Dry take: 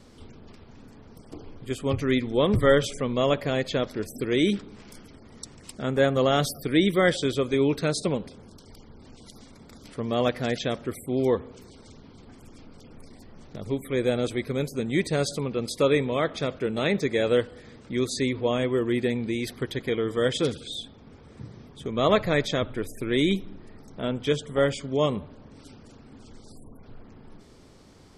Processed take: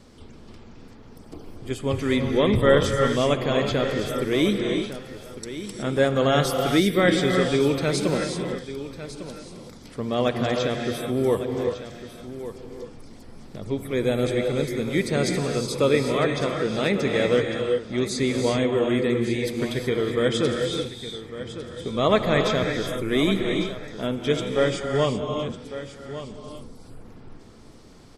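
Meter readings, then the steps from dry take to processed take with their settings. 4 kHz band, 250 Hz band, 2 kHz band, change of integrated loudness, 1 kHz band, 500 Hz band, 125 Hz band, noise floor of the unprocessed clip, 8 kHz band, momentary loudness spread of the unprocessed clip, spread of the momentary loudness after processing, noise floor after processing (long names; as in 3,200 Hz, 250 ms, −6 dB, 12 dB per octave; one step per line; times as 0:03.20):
+3.0 dB, +2.5 dB, +3.0 dB, +2.5 dB, +3.0 dB, +3.0 dB, +3.0 dB, −50 dBFS, +3.0 dB, 13 LU, 16 LU, −45 dBFS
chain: on a send: single-tap delay 1,152 ms −13 dB
on the sum: reverb whose tail is shaped and stops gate 400 ms rising, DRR 3 dB
level +1 dB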